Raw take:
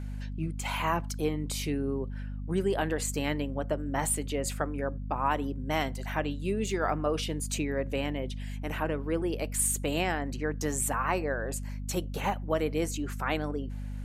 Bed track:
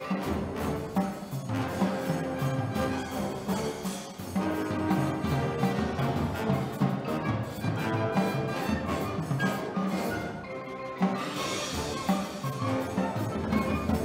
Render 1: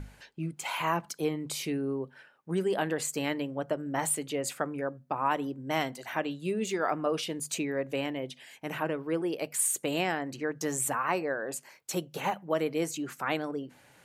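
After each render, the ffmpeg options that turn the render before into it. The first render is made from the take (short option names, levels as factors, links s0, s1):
-af "bandreject=f=50:t=h:w=6,bandreject=f=100:t=h:w=6,bandreject=f=150:t=h:w=6,bandreject=f=200:t=h:w=6,bandreject=f=250:t=h:w=6"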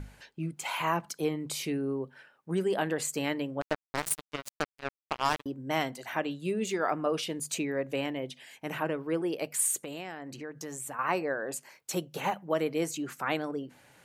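-filter_complex "[0:a]asettb=1/sr,asplit=3[s0][s1][s2];[s0]atrim=end=3.614[s3];[s1]atrim=start=3.61:end=5.46,asetpts=PTS-STARTPTS,afade=t=in:d=0.004:c=qsin,afade=t=out:st=1.846:d=0.004:c=qsin,acrusher=bits=3:mix=0:aa=0.5[s4];[s2]atrim=start=5.456[s5];[s3][s4]acrossfade=d=0.004:c1=hsin:c2=qsin[s6];[s6][s5]acrossfade=d=0.004:c1=qsin:c2=hsin,asettb=1/sr,asplit=3[s7][s8][s9];[s7]atrim=end=9.804[s10];[s8]atrim=start=9.8:end=10.99,asetpts=PTS-STARTPTS,afade=t=in:d=0.004:c=qsin,afade=t=out:st=1.186:d=0.004:c=qsin,acompressor=threshold=0.01:ratio=2.5:attack=3.2:release=140:knee=1:detection=peak[s11];[s9]atrim=start=10.986[s12];[s10][s11]acrossfade=d=0.004:c1=hsin:c2=qsin[s13];[s13][s12]acrossfade=d=0.004:c1=qsin:c2=hsin"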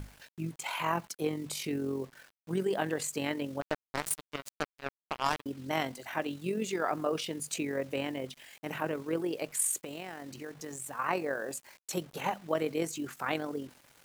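-af "acrusher=bits=8:mix=0:aa=0.000001,tremolo=f=45:d=0.462"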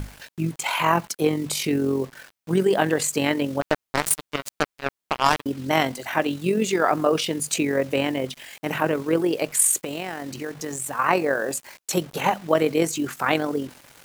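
-af "volume=3.55"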